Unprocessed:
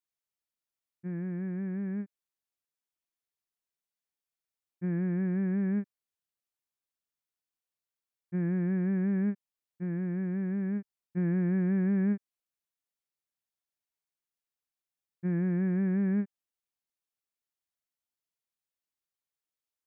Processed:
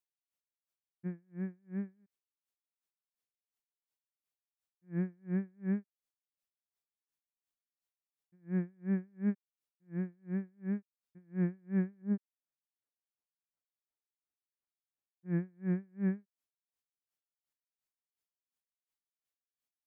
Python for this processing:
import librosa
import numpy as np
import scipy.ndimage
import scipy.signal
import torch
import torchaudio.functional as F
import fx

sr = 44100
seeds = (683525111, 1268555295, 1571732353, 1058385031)

y = fx.lowpass(x, sr, hz=1300.0, slope=12, at=(12.02, 15.26))
y = y * 10.0 ** (-38 * (0.5 - 0.5 * np.cos(2.0 * np.pi * 2.8 * np.arange(len(y)) / sr)) / 20.0)